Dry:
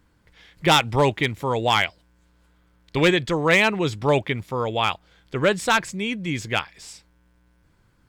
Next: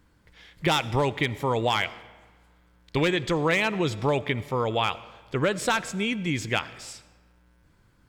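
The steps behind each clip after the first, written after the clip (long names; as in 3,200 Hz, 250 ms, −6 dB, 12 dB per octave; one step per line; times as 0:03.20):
downward compressor, threshold −20 dBFS, peak gain reduction 7.5 dB
on a send at −17 dB: convolution reverb RT60 1.4 s, pre-delay 41 ms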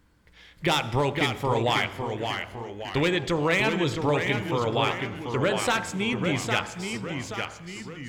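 delay with pitch and tempo change per echo 469 ms, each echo −1 semitone, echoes 3, each echo −6 dB
hum removal 52.57 Hz, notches 32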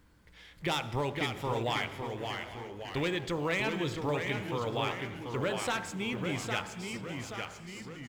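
mu-law and A-law mismatch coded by mu
multi-tap delay 701/813 ms −19/−18.5 dB
level −8.5 dB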